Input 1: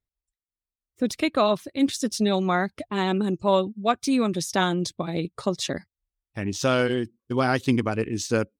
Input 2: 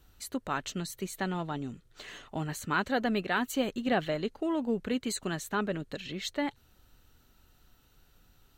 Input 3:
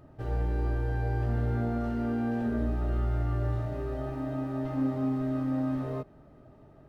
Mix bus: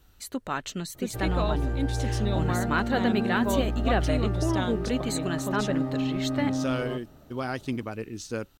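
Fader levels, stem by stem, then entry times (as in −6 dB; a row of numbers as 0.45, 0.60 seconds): −9.0, +2.0, +1.0 decibels; 0.00, 0.00, 0.95 seconds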